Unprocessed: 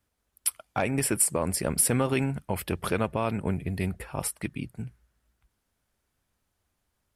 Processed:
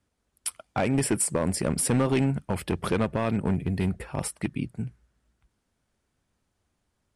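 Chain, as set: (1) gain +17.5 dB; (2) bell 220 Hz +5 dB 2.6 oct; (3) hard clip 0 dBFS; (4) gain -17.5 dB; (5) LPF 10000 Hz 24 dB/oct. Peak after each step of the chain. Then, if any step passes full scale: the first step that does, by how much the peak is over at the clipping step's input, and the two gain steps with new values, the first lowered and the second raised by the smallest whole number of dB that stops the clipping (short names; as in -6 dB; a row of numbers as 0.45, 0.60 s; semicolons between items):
+8.0, +8.0, 0.0, -17.5, -16.5 dBFS; step 1, 8.0 dB; step 1 +9.5 dB, step 4 -9.5 dB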